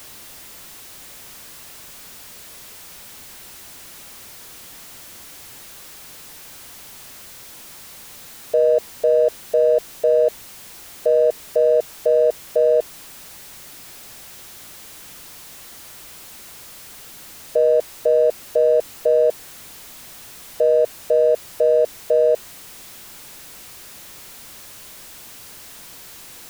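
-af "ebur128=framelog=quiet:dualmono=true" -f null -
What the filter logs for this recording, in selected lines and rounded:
Integrated loudness:
  I:         -15.6 LUFS
  Threshold: -30.4 LUFS
Loudness range:
  LRA:        18.4 LU
  Threshold: -39.9 LUFS
  LRA low:   -34.6 LUFS
  LRA high:  -16.2 LUFS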